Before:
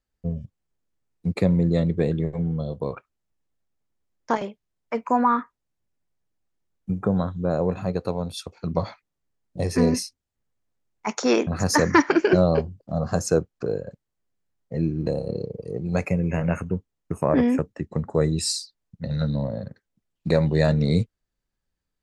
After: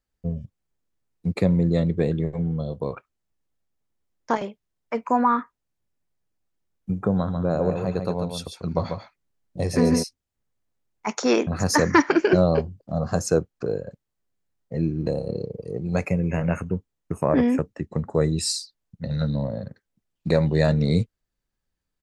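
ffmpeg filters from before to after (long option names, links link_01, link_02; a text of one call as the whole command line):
ffmpeg -i in.wav -filter_complex "[0:a]asplit=3[link_01][link_02][link_03];[link_01]afade=type=out:start_time=7.27:duration=0.02[link_04];[link_02]aecho=1:1:143:0.473,afade=type=in:start_time=7.27:duration=0.02,afade=type=out:start_time=10.02:duration=0.02[link_05];[link_03]afade=type=in:start_time=10.02:duration=0.02[link_06];[link_04][link_05][link_06]amix=inputs=3:normalize=0" out.wav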